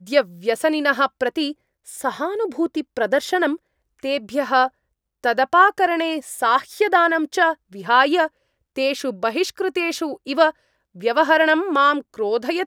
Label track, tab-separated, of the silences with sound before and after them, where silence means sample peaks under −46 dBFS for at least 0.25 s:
1.530000	1.860000	silence
3.570000	3.990000	silence
4.690000	5.240000	silence
8.280000	8.760000	silence
10.520000	10.950000	silence